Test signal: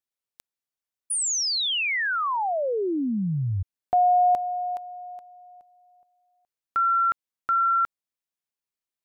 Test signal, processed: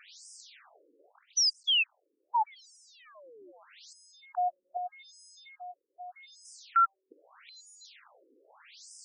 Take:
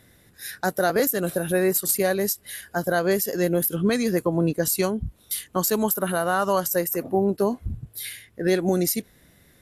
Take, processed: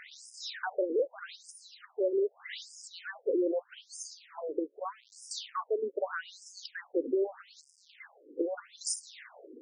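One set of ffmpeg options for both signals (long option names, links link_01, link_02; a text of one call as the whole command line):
ffmpeg -i in.wav -af "aeval=exprs='val(0)+0.5*0.0158*sgn(val(0))':channel_layout=same,alimiter=limit=-18dB:level=0:latency=1:release=39,afftfilt=real='re*between(b*sr/1024,360*pow(7000/360,0.5+0.5*sin(2*PI*0.81*pts/sr))/1.41,360*pow(7000/360,0.5+0.5*sin(2*PI*0.81*pts/sr))*1.41)':imag='im*between(b*sr/1024,360*pow(7000/360,0.5+0.5*sin(2*PI*0.81*pts/sr))/1.41,360*pow(7000/360,0.5+0.5*sin(2*PI*0.81*pts/sr))*1.41)':win_size=1024:overlap=0.75" out.wav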